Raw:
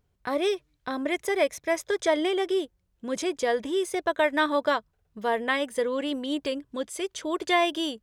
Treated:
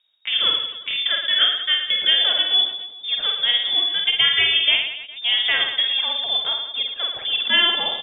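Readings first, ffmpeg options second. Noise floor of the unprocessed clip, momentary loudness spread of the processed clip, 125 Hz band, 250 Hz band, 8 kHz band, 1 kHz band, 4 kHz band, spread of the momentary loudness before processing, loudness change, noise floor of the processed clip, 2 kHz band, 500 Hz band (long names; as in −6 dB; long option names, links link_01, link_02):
−72 dBFS, 8 LU, can't be measured, below −15 dB, below −40 dB, −4.0 dB, +21.0 dB, 9 LU, +9.5 dB, −39 dBFS, +7.5 dB, −13.0 dB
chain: -af "aecho=1:1:50|112.5|190.6|288.3|410.4:0.631|0.398|0.251|0.158|0.1,lowpass=frequency=3200:width_type=q:width=0.5098,lowpass=frequency=3200:width_type=q:width=0.6013,lowpass=frequency=3200:width_type=q:width=0.9,lowpass=frequency=3200:width_type=q:width=2.563,afreqshift=-3800,volume=4.5dB"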